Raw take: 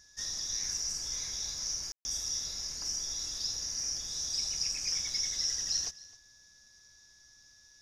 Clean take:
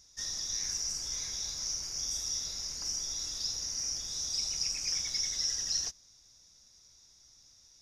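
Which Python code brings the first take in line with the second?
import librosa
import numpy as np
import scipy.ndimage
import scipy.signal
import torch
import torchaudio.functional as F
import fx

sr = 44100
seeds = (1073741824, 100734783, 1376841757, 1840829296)

y = fx.notch(x, sr, hz=1700.0, q=30.0)
y = fx.fix_ambience(y, sr, seeds[0], print_start_s=6.21, print_end_s=6.71, start_s=1.92, end_s=2.05)
y = fx.fix_echo_inverse(y, sr, delay_ms=261, level_db=-20.0)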